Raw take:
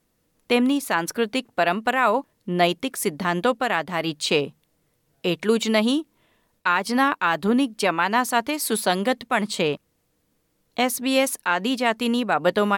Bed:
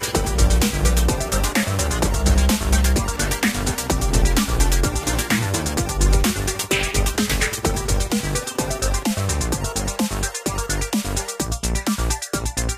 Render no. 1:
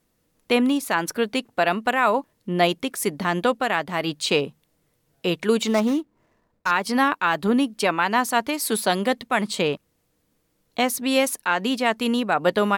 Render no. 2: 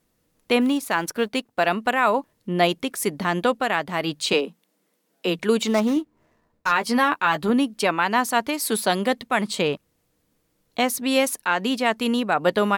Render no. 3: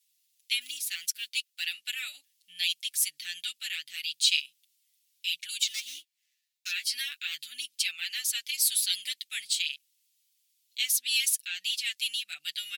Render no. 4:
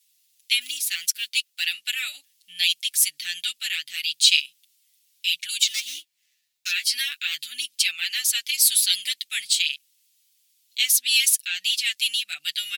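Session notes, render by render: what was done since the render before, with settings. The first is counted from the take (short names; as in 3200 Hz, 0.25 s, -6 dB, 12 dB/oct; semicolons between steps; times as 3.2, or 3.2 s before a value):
5.67–6.71 median filter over 15 samples
0.61–1.66 G.711 law mismatch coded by A; 4.33–5.39 steep high-pass 170 Hz 96 dB/oct; 5.95–7.5 doubler 13 ms -7 dB
inverse Chebyshev high-pass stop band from 1100 Hz, stop band 50 dB; comb 6.9 ms, depth 89%
gain +7.5 dB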